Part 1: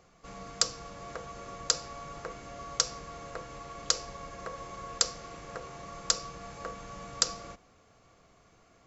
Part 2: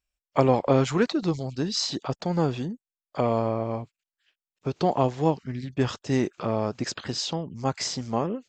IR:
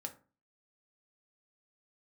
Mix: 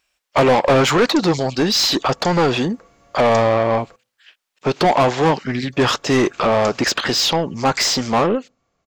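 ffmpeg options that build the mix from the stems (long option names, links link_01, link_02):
-filter_complex "[0:a]adelay=550,volume=-10.5dB,asplit=3[link_01][link_02][link_03];[link_01]atrim=end=3.96,asetpts=PTS-STARTPTS,afade=type=out:start_time=3.956:duration=0.004:curve=hsin[link_04];[link_02]atrim=start=3.96:end=5.73,asetpts=PTS-STARTPTS,volume=0[link_05];[link_03]atrim=start=5.73,asetpts=PTS-STARTPTS,afade=type=in:duration=0.004:curve=hsin[link_06];[link_04][link_05][link_06]concat=n=3:v=0:a=1,asplit=2[link_07][link_08];[link_08]volume=-10dB[link_09];[1:a]asplit=2[link_10][link_11];[link_11]highpass=frequency=720:poles=1,volume=25dB,asoftclip=type=tanh:threshold=-9dB[link_12];[link_10][link_12]amix=inputs=2:normalize=0,lowpass=frequency=4200:poles=1,volume=-6dB,volume=2.5dB,asplit=2[link_13][link_14];[link_14]volume=-22.5dB[link_15];[2:a]atrim=start_sample=2205[link_16];[link_09][link_15]amix=inputs=2:normalize=0[link_17];[link_17][link_16]afir=irnorm=-1:irlink=0[link_18];[link_07][link_13][link_18]amix=inputs=3:normalize=0"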